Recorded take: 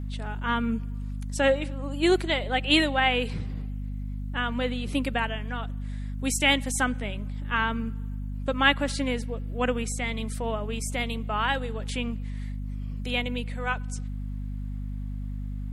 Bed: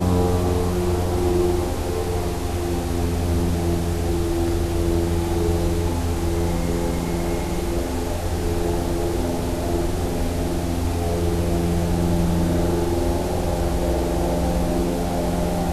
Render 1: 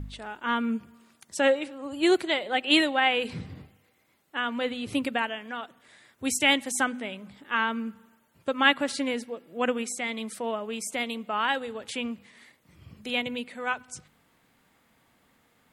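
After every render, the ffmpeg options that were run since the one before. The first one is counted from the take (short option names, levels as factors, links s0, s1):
-af "bandreject=f=50:t=h:w=4,bandreject=f=100:t=h:w=4,bandreject=f=150:t=h:w=4,bandreject=f=200:t=h:w=4,bandreject=f=250:t=h:w=4"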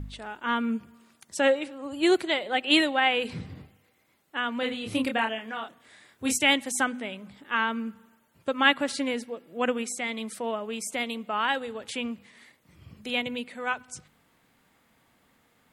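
-filter_complex "[0:a]asettb=1/sr,asplit=3[s0][s1][s2];[s0]atrim=end=4.604[s3];[s1]atrim=start=4.6:end=6.38,asetpts=PTS-STARTPTS,afade=t=in:d=0.004:c=qsin,afade=t=out:st=1.776:d=0.004:c=qsin,asplit=2[s4][s5];[s5]adelay=27,volume=0.631[s6];[s4][s6]amix=inputs=2:normalize=0,atrim=end_sample=78498[s7];[s2]atrim=start=6.376[s8];[s3][s7]acrossfade=d=0.004:c1=hsin:c2=qsin[s9];[s9][s8]acrossfade=d=0.004:c1=qsin:c2=hsin"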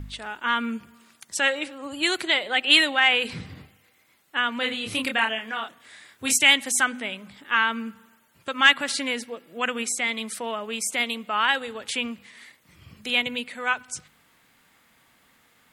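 -filter_complex "[0:a]acrossover=split=1100[s0][s1];[s0]alimiter=level_in=1.12:limit=0.0631:level=0:latency=1,volume=0.891[s2];[s1]acontrast=84[s3];[s2][s3]amix=inputs=2:normalize=0"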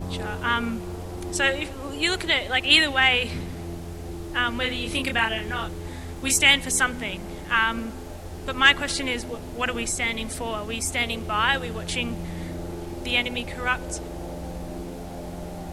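-filter_complex "[1:a]volume=0.224[s0];[0:a][s0]amix=inputs=2:normalize=0"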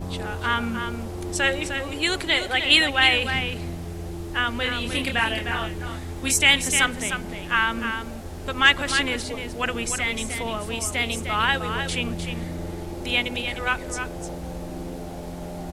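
-af "aecho=1:1:305:0.422"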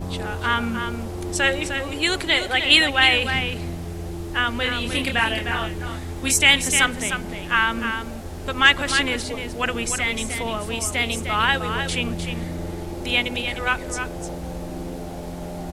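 -af "volume=1.26,alimiter=limit=0.794:level=0:latency=1"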